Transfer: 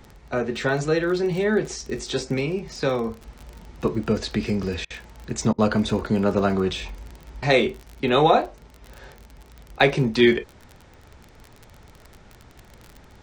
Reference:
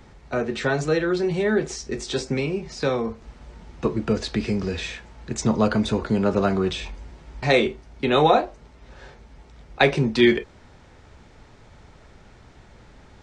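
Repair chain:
click removal
repair the gap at 0:04.85/0:05.53, 52 ms

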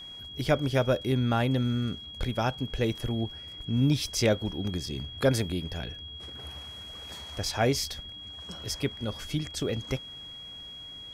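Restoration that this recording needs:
notch filter 3,300 Hz, Q 30

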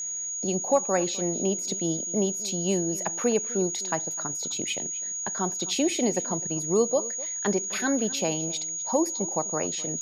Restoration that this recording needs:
click removal
notch filter 6,700 Hz, Q 30
echo removal 254 ms −19 dB

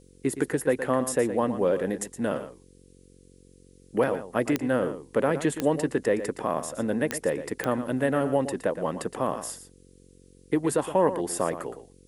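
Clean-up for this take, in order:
click removal
hum removal 45.8 Hz, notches 11
downward expander −46 dBFS, range −21 dB
echo removal 117 ms −11.5 dB

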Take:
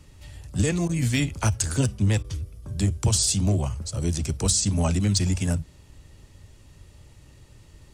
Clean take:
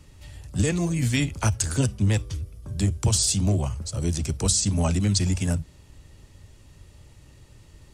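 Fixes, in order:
clipped peaks rebuilt −11.5 dBFS
repair the gap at 0:00.88/0:02.23, 11 ms

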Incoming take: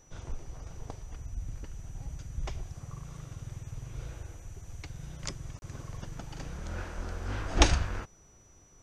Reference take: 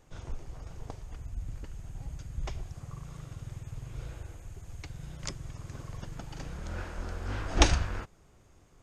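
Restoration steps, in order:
notch filter 5,900 Hz, Q 30
repair the gap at 0:05.59, 31 ms

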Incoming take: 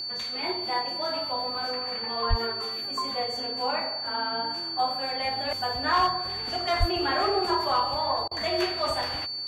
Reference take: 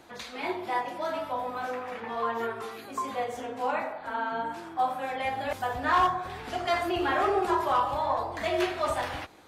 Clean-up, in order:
hum removal 117.1 Hz, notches 4
notch filter 4,500 Hz, Q 30
high-pass at the plosives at 0:02.29/0:06.79
repair the gap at 0:08.28, 31 ms

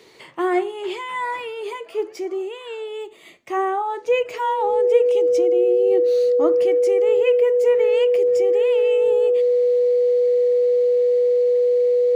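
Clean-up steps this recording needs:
notch filter 490 Hz, Q 30

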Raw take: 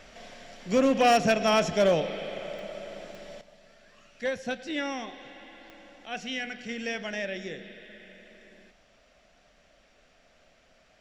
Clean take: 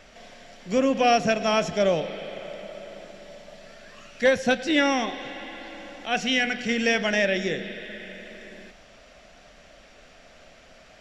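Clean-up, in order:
clipped peaks rebuilt −16 dBFS
click removal
level 0 dB, from 0:03.41 +10.5 dB

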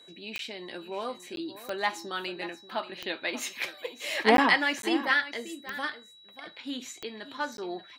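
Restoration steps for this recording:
click removal
notch filter 3,900 Hz, Q 30
repair the gap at 0:00.38/0:01.36/0:04.37/0:04.82/0:07.57, 12 ms
echo removal 584 ms −14 dB

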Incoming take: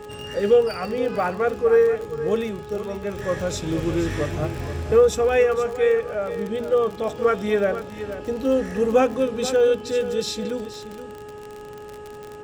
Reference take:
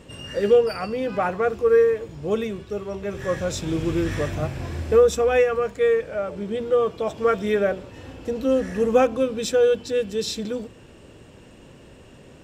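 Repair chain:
click removal
hum removal 419.3 Hz, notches 4
echo removal 475 ms −12 dB

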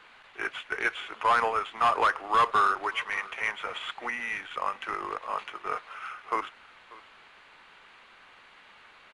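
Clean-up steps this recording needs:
echo removal 591 ms −21 dB

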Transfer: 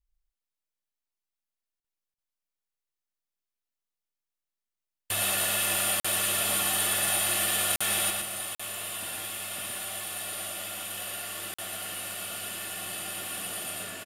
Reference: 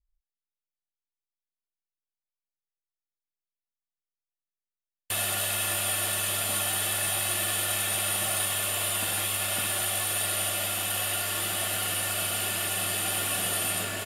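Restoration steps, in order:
clipped peaks rebuilt −17.5 dBFS
repair the gap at 0:01.80/0:02.14/0:06.00/0:07.76/0:08.55/0:11.54, 45 ms
echo removal 116 ms −4 dB
level 0 dB, from 0:08.10 +8.5 dB

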